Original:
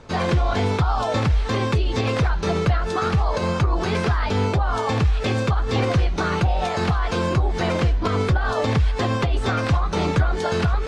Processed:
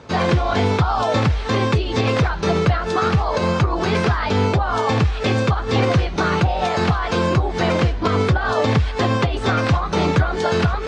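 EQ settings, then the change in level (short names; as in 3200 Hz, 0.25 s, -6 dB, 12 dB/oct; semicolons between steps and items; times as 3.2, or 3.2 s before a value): HPF 80 Hz; LPF 7500 Hz 12 dB/oct; +4.0 dB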